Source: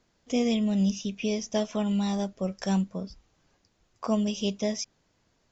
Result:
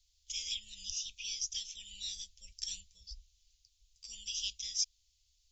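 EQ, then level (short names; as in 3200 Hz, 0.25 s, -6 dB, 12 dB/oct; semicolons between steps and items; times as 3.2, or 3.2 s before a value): inverse Chebyshev band-stop 150–1400 Hz, stop band 50 dB; +2.5 dB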